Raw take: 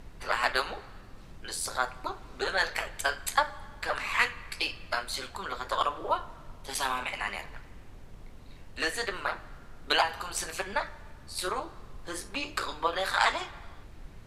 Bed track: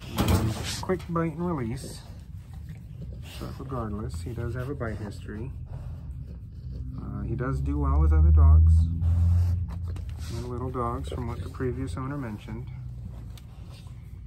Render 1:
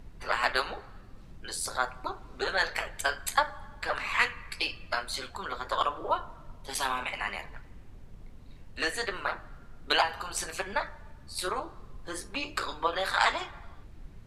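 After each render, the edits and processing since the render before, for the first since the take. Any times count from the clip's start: noise reduction 6 dB, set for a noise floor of -49 dBFS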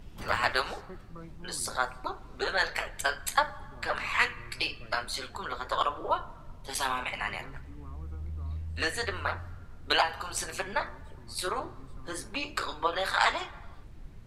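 add bed track -20 dB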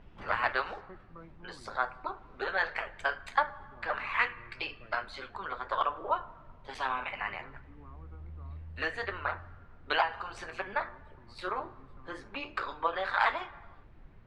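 low-pass 2.2 kHz 12 dB/octave; bass shelf 390 Hz -8 dB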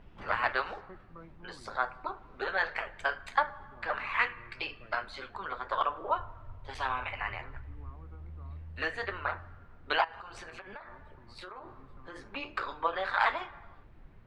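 6.17–7.91 s: resonant low shelf 130 Hz +7 dB, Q 3; 10.04–12.16 s: compression 10:1, threshold -41 dBFS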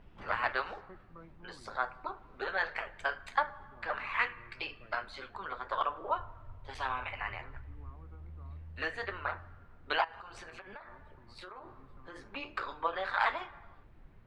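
trim -2.5 dB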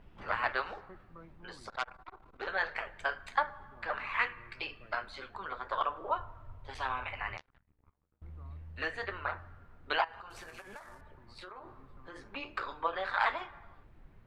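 1.69–2.47 s: transformer saturation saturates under 2.2 kHz; 7.37–8.22 s: power-law waveshaper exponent 3; 10.30–11.01 s: CVSD coder 64 kbps

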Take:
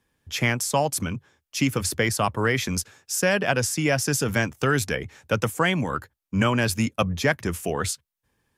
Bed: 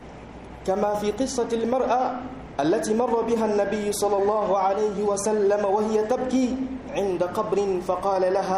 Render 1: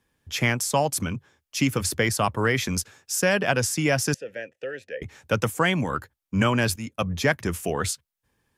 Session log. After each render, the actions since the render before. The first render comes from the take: 4.14–5.02 s: vowel filter e; 6.76–7.18 s: fade in, from -15.5 dB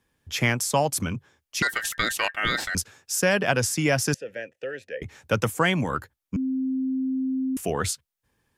1.62–2.75 s: ring modulator 1.7 kHz; 6.36–7.57 s: bleep 262 Hz -23 dBFS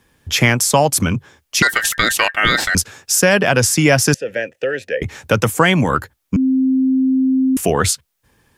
in parallel at +1 dB: compression, threshold -31 dBFS, peak gain reduction 14 dB; on the sum: loudness maximiser +7.5 dB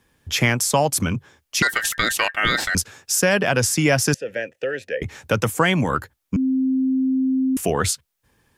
trim -5 dB

